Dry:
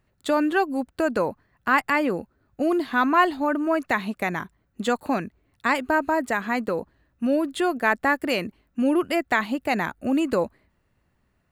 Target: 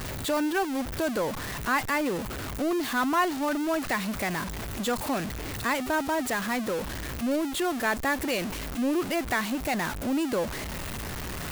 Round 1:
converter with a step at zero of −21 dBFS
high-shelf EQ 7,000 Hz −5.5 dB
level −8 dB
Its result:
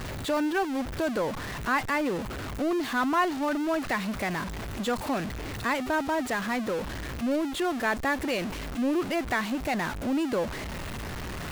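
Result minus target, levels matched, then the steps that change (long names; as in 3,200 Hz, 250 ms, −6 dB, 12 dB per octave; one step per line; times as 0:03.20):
8,000 Hz band −5.0 dB
change: high-shelf EQ 7,000 Hz +4.5 dB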